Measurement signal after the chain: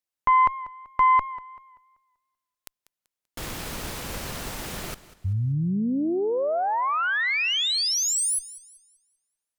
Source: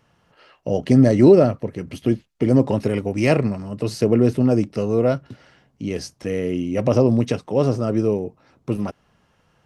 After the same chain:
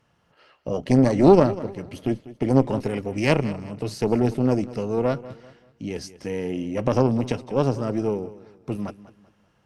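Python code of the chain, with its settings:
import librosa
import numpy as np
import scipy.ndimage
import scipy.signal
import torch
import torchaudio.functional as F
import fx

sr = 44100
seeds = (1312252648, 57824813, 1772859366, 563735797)

y = fx.cheby_harmonics(x, sr, harmonics=(2, 3), levels_db=(-8, -24), full_scale_db=-2.5)
y = fx.echo_warbled(y, sr, ms=193, feedback_pct=35, rate_hz=2.8, cents=62, wet_db=-17.0)
y = F.gain(torch.from_numpy(y), -2.5).numpy()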